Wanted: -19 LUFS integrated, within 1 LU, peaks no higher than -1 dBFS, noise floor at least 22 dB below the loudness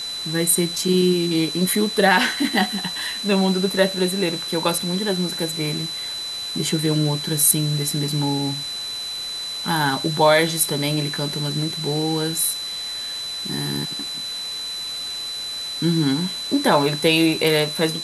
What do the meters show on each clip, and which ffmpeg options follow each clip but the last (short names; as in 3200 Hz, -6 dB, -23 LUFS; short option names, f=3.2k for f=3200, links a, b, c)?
steady tone 4000 Hz; tone level -27 dBFS; noise floor -30 dBFS; noise floor target -43 dBFS; loudness -21.0 LUFS; peak -3.0 dBFS; loudness target -19.0 LUFS
-> -af "bandreject=f=4k:w=30"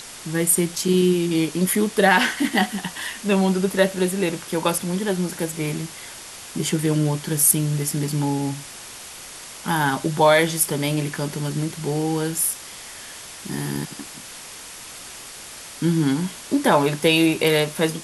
steady tone none; noise floor -39 dBFS; noise floor target -43 dBFS
-> -af "afftdn=nr=6:nf=-39"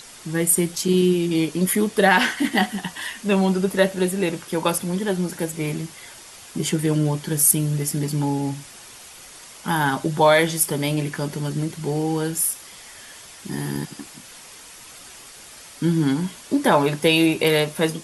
noise floor -43 dBFS; loudness -21.0 LUFS; peak -3.5 dBFS; loudness target -19.0 LUFS
-> -af "volume=2dB"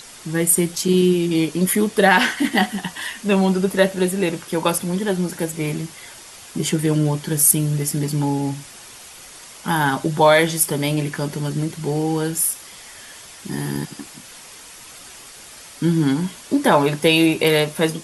loudness -19.0 LUFS; peak -1.5 dBFS; noise floor -41 dBFS